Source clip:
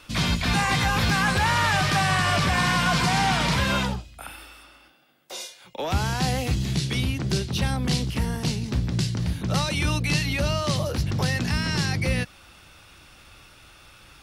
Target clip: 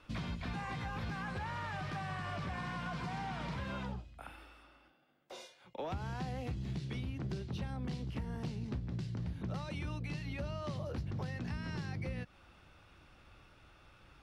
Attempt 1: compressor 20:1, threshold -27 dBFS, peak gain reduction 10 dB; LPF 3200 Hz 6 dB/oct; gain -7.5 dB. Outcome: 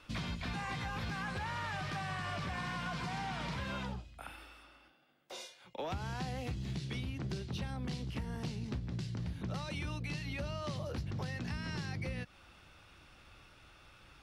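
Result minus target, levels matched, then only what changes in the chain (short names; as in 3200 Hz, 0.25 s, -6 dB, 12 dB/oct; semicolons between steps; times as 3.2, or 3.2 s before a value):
4000 Hz band +4.5 dB
change: LPF 1400 Hz 6 dB/oct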